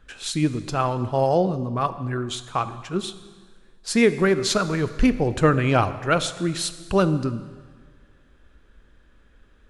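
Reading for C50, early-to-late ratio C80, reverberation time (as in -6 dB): 13.5 dB, 14.5 dB, 1.6 s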